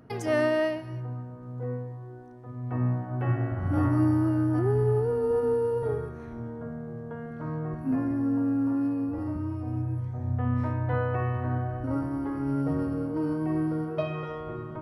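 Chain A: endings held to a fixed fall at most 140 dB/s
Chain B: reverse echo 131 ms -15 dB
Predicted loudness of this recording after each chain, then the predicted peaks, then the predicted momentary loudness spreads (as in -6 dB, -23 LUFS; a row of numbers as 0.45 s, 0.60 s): -29.0 LUFS, -28.5 LUFS; -14.0 dBFS, -13.5 dBFS; 13 LU, 14 LU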